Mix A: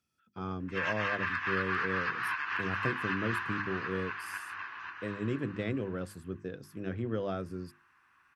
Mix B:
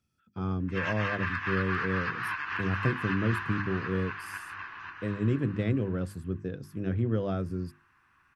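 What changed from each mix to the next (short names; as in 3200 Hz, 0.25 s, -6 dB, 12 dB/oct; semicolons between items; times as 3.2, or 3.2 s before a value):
master: add low shelf 220 Hz +12 dB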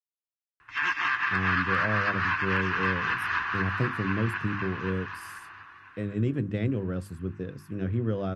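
speech: entry +0.95 s; background +6.0 dB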